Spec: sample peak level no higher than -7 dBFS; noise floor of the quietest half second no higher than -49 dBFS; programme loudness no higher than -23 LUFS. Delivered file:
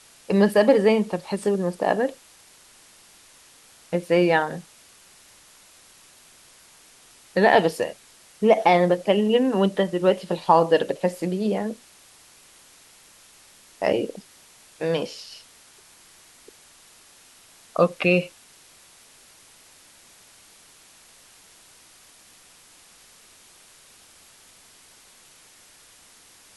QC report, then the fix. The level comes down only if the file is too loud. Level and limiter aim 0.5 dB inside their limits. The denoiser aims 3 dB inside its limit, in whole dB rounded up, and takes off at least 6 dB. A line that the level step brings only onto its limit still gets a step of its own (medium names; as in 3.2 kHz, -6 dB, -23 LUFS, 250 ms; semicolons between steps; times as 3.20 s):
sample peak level -5.0 dBFS: fail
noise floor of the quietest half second -52 dBFS: pass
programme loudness -22.0 LUFS: fail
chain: trim -1.5 dB; peak limiter -7.5 dBFS